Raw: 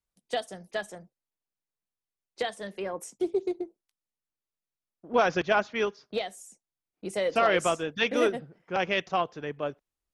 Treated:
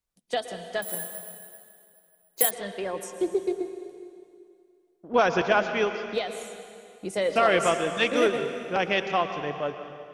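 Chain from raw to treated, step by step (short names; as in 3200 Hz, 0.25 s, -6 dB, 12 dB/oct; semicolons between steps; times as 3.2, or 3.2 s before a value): on a send at -7.5 dB: reverb RT60 2.4 s, pre-delay 0.104 s; 0.82–2.51 on the sum: careless resampling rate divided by 4×, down filtered, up zero stuff; gain +2 dB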